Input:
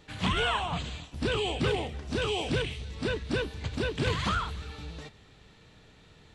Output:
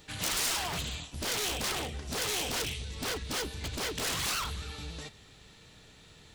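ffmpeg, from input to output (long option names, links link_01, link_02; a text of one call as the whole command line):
ffmpeg -i in.wav -af "aeval=exprs='0.0316*(abs(mod(val(0)/0.0316+3,4)-2)-1)':channel_layout=same,crystalizer=i=2.5:c=0,volume=-1dB" out.wav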